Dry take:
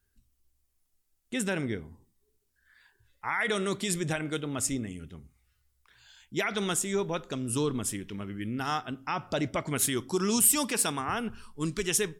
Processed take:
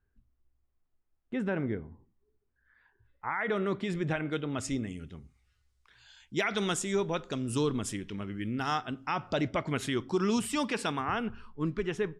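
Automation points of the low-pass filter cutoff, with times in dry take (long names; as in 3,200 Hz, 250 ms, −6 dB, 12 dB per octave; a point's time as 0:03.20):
0:03.33 1,500 Hz
0:04.37 3,000 Hz
0:04.89 6,600 Hz
0:08.90 6,600 Hz
0:09.85 3,500 Hz
0:11.24 3,500 Hz
0:11.64 1,700 Hz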